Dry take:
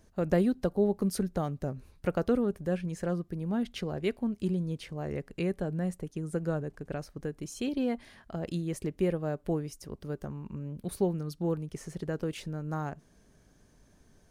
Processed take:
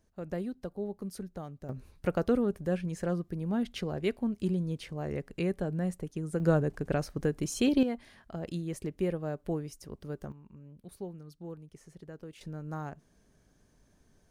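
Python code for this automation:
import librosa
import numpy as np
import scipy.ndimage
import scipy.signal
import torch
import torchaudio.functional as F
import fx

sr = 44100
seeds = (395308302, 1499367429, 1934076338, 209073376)

y = fx.gain(x, sr, db=fx.steps((0.0, -10.0), (1.69, 0.0), (6.4, 6.5), (7.83, -2.5), (10.32, -12.5), (12.41, -4.0)))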